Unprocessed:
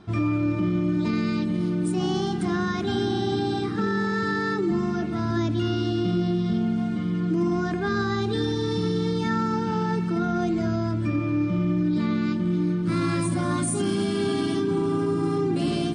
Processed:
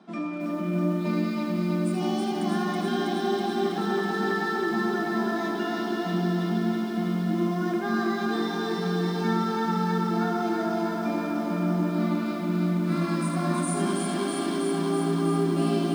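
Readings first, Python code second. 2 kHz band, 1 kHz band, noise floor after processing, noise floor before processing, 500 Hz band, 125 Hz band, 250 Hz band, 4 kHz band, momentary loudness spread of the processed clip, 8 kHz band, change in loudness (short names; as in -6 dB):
0.0 dB, +1.5 dB, -30 dBFS, -27 dBFS, -1.0 dB, -4.0 dB, -2.0 dB, -2.0 dB, 2 LU, -1.5 dB, -1.5 dB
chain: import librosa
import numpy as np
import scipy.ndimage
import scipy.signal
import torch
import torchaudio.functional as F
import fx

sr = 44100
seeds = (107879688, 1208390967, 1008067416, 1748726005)

y = scipy.signal.sosfilt(scipy.signal.cheby1(6, 6, 160.0, 'highpass', fs=sr, output='sos'), x)
y = fx.peak_eq(y, sr, hz=440.0, db=-4.0, octaves=0.21)
y = fx.echo_feedback(y, sr, ms=79, feedback_pct=44, wet_db=-8)
y = fx.echo_crushed(y, sr, ms=324, feedback_pct=80, bits=9, wet_db=-3)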